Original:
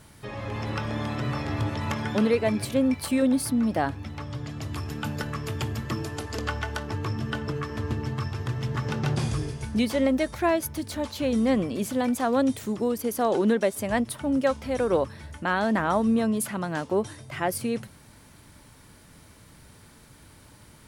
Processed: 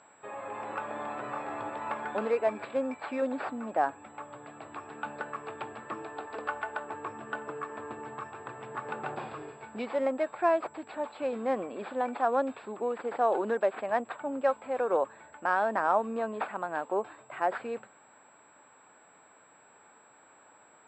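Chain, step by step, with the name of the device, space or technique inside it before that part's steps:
toy sound module (linearly interpolated sample-rate reduction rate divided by 4×; switching amplifier with a slow clock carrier 7,700 Hz; loudspeaker in its box 550–3,600 Hz, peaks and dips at 780 Hz +3 dB, 2,000 Hz −8 dB, 3,100 Hz −10 dB)

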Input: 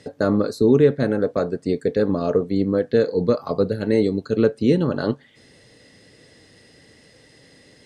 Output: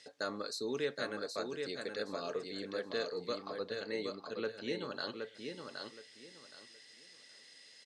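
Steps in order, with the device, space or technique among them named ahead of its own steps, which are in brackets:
0:03.35–0:04.84: low-pass filter 2,400 Hz 6 dB per octave
piezo pickup straight into a mixer (low-pass filter 5,200 Hz 12 dB per octave; first difference)
repeating echo 770 ms, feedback 24%, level −5 dB
level +3.5 dB

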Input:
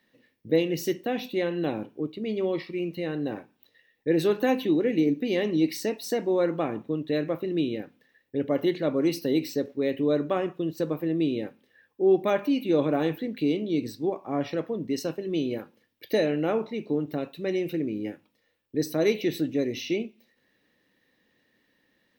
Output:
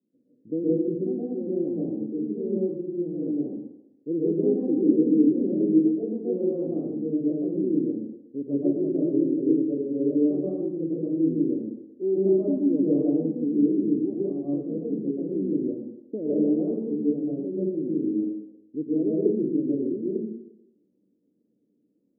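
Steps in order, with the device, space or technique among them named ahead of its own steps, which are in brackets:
high-pass filter 280 Hz 12 dB per octave
next room (low-pass filter 330 Hz 24 dB per octave; convolution reverb RT60 0.90 s, pre-delay 114 ms, DRR −8 dB)
0:19.50–0:20.01: high-frequency loss of the air 430 metres
level +2 dB

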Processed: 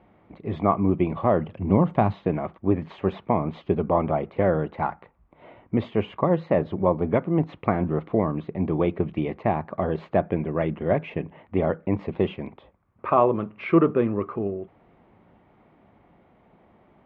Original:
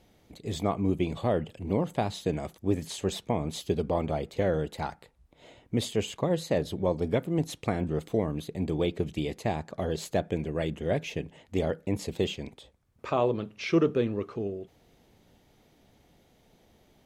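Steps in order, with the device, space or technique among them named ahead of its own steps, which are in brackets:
0:01.46–0:02.13: bass and treble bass +6 dB, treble +9 dB
bass cabinet (loudspeaker in its box 60–2,100 Hz, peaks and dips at 73 Hz −10 dB, 130 Hz −6 dB, 270 Hz −3 dB, 460 Hz −5 dB, 1,100 Hz +6 dB, 1,700 Hz −4 dB)
level +7.5 dB

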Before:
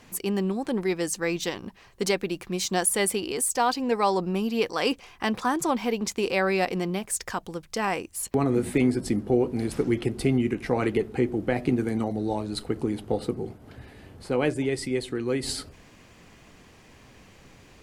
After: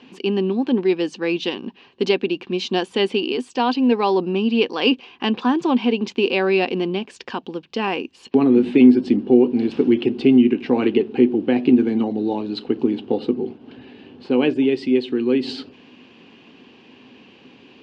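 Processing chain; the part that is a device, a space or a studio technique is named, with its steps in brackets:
kitchen radio (loudspeaker in its box 220–4,100 Hz, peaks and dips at 250 Hz +10 dB, 380 Hz +4 dB, 630 Hz −7 dB, 1,300 Hz −7 dB, 2,000 Hz −8 dB, 2,800 Hz +8 dB)
level +5 dB

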